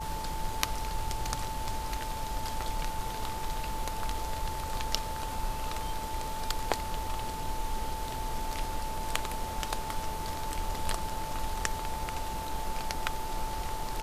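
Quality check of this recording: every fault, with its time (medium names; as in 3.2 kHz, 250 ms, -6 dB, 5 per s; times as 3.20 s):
whine 880 Hz -37 dBFS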